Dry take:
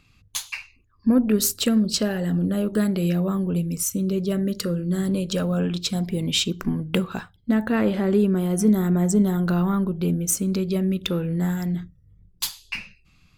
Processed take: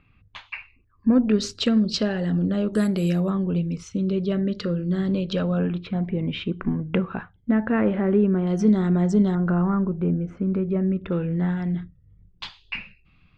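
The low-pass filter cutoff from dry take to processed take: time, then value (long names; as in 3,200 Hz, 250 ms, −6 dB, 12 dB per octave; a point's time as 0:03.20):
low-pass filter 24 dB per octave
2,600 Hz
from 0:01.13 5,100 Hz
from 0:02.73 10,000 Hz
from 0:03.30 4,100 Hz
from 0:05.59 2,400 Hz
from 0:08.47 4,900 Hz
from 0:09.35 1,900 Hz
from 0:11.12 3,300 Hz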